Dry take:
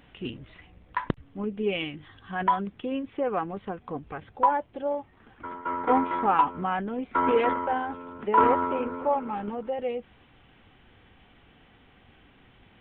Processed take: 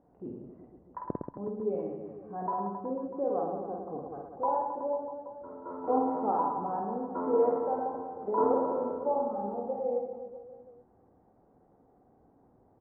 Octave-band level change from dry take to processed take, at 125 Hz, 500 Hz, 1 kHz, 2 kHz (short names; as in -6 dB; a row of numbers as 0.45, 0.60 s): -7.0 dB, -1.0 dB, -7.0 dB, under -20 dB